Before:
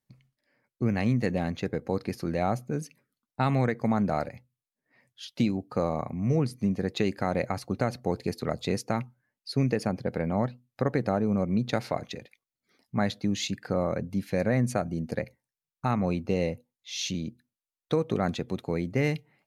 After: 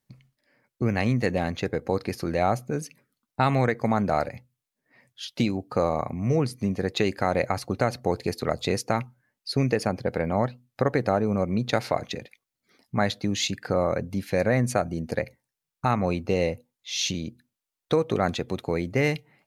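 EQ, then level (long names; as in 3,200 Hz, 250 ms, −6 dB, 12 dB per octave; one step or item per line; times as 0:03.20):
dynamic equaliser 190 Hz, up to −6 dB, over −38 dBFS, Q 0.88
+5.5 dB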